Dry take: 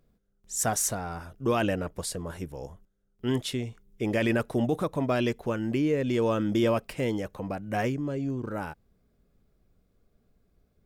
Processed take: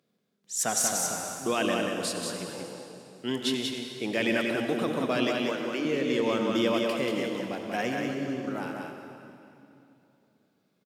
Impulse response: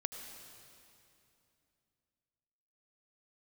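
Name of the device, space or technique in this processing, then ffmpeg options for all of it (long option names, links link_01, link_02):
PA in a hall: -filter_complex "[0:a]asettb=1/sr,asplit=3[link_01][link_02][link_03];[link_01]atrim=end=5.274[link_04];[link_02]atrim=start=5.27:end=5.85,asetpts=PTS-STARTPTS,afade=type=in:duration=0.004:curve=qsin,afade=type=out:start_time=0.576:duration=0.004:curve=qsin,highpass=frequency=290:width=0.5412,highpass=frequency=290:width=1.3066[link_05];[link_03]atrim=start=5.846[link_06];[link_04][link_05]acrossfade=duration=0.004:curve1=hsin:curve2=qsin[link_07];[link_07][link_06]acrossfade=duration=0.004:curve1=qsin:curve2=hsin,highpass=frequency=160:width=0.5412,highpass=frequency=160:width=1.3066,equalizer=frequency=3700:width_type=o:width=1.9:gain=8,aecho=1:1:186:0.631[link_08];[1:a]atrim=start_sample=2205[link_09];[link_08][link_09]afir=irnorm=-1:irlink=0,volume=-2dB"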